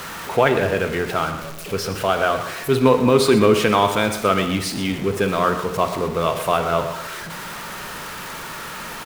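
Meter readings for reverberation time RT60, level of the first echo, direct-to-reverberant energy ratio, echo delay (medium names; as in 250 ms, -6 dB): 1.1 s, -12.5 dB, 7.5 dB, 121 ms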